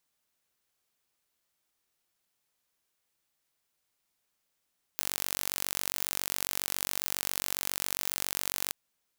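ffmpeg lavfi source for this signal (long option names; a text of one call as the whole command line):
ffmpeg -f lavfi -i "aevalsrc='0.596*eq(mod(n,932),0)':duration=3.74:sample_rate=44100" out.wav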